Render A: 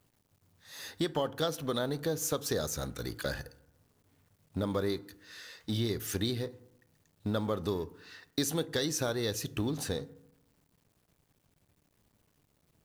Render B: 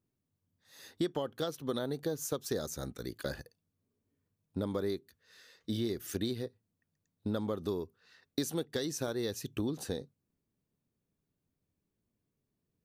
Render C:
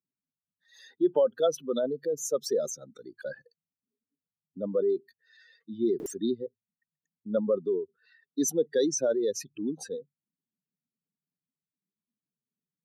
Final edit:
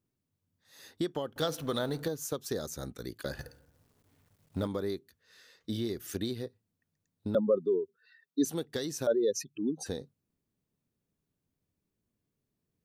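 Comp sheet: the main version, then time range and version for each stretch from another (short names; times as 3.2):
B
1.36–2.08 from A
3.39–4.67 from A
7.35–8.45 from C
9.07–9.86 from C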